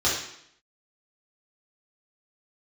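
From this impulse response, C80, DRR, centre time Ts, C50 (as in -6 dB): 6.5 dB, -8.0 dB, 48 ms, 2.5 dB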